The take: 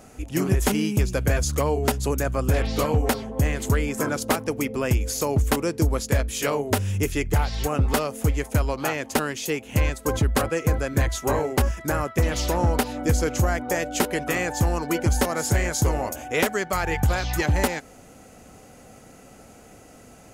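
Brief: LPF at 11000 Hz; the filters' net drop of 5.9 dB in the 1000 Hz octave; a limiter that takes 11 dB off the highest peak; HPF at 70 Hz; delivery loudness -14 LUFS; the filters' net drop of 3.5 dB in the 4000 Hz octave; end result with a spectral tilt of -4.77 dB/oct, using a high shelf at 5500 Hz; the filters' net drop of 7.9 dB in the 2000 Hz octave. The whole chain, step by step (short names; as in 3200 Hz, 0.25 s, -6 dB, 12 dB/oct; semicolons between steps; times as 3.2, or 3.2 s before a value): HPF 70 Hz; LPF 11000 Hz; bell 1000 Hz -6.5 dB; bell 2000 Hz -7.5 dB; bell 4000 Hz -6.5 dB; high shelf 5500 Hz +9 dB; gain +14.5 dB; limiter -3.5 dBFS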